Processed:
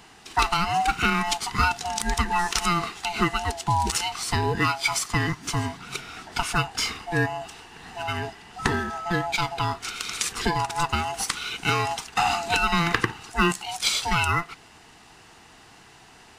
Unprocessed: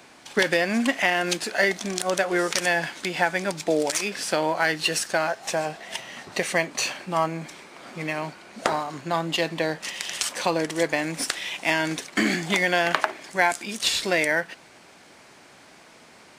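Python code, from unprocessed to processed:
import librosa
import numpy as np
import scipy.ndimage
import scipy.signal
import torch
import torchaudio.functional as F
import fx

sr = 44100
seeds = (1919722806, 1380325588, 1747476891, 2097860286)

y = fx.band_swap(x, sr, width_hz=500)
y = fx.dmg_tone(y, sr, hz=1300.0, level_db=-32.0, at=(8.58, 9.25), fade=0.02)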